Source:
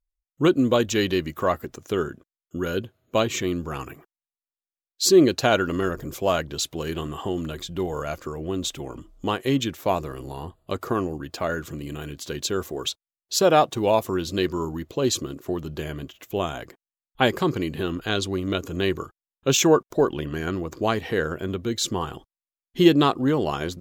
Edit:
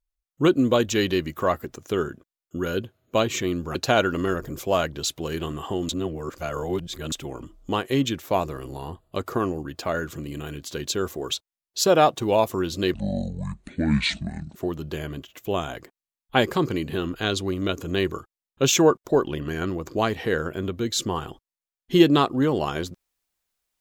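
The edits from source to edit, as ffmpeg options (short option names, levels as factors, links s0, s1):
-filter_complex "[0:a]asplit=6[s0][s1][s2][s3][s4][s5];[s0]atrim=end=3.752[s6];[s1]atrim=start=5.298:end=7.442[s7];[s2]atrim=start=7.438:end=8.672,asetpts=PTS-STARTPTS,areverse[s8];[s3]atrim=start=8.668:end=14.494[s9];[s4]atrim=start=14.49:end=15.41,asetpts=PTS-STARTPTS,asetrate=25137,aresample=44100[s10];[s5]atrim=start=15.406[s11];[s6][s7]acrossfade=d=0.004:c1=hsin:c2=hsin[s12];[s12][s8]acrossfade=d=0.004:c1=hsin:c2=hsin[s13];[s13][s9]acrossfade=d=0.004:c1=hsin:c2=hsin[s14];[s14][s10]acrossfade=d=0.004:c1=hsin:c2=hsin[s15];[s15][s11]acrossfade=d=0.004:c1=hsin:c2=hsin"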